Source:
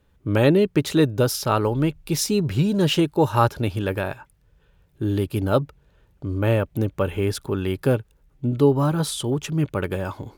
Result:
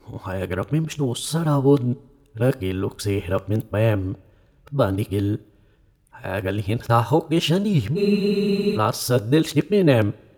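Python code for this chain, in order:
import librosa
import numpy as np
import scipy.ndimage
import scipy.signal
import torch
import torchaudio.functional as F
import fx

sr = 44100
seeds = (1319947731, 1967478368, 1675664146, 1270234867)

y = x[::-1].copy()
y = fx.rev_double_slope(y, sr, seeds[0], early_s=0.4, late_s=1.6, knee_db=-16, drr_db=16.0)
y = fx.spec_freeze(y, sr, seeds[1], at_s=7.99, hold_s=0.77)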